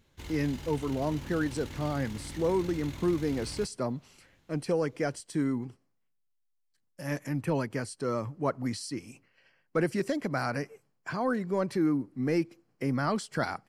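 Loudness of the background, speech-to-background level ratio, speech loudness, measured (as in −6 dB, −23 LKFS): −43.5 LKFS, 12.0 dB, −31.5 LKFS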